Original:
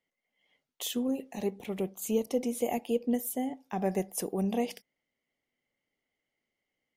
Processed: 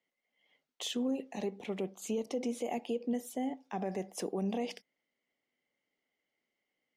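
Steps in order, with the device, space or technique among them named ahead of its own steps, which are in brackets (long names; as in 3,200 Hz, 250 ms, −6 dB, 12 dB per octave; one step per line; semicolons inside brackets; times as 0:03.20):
DJ mixer with the lows and highs turned down (three-way crossover with the lows and the highs turned down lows −13 dB, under 160 Hz, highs −20 dB, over 7,500 Hz; brickwall limiter −26 dBFS, peak gain reduction 8.5 dB)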